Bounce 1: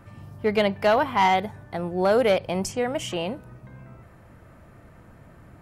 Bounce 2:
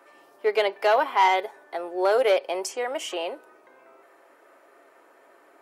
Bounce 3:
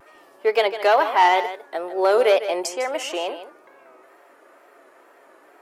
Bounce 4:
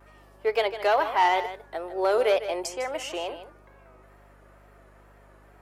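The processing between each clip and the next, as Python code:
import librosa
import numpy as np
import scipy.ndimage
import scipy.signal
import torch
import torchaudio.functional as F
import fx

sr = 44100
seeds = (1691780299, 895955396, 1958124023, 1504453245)

y1 = scipy.signal.sosfilt(scipy.signal.cheby1(4, 1.0, 350.0, 'highpass', fs=sr, output='sos'), x)
y1 = y1 + 0.32 * np.pad(y1, (int(7.3 * sr / 1000.0), 0))[:len(y1)]
y2 = fx.vibrato(y1, sr, rate_hz=2.2, depth_cents=85.0)
y2 = y2 + 10.0 ** (-12.0 / 20.0) * np.pad(y2, (int(153 * sr / 1000.0), 0))[:len(y2)]
y2 = y2 * 10.0 ** (3.5 / 20.0)
y3 = fx.add_hum(y2, sr, base_hz=50, snr_db=28)
y3 = y3 * 10.0 ** (-5.5 / 20.0)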